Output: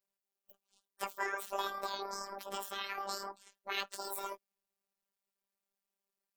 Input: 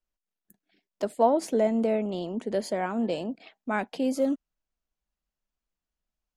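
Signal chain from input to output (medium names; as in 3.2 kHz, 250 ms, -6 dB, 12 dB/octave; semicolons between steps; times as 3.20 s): rotating-head pitch shifter +9.5 st; treble shelf 7.7 kHz +5.5 dB; small resonant body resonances 320/660 Hz, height 8 dB, ringing for 20 ms; spectral gate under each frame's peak -15 dB weak; robot voice 197 Hz; trim +2 dB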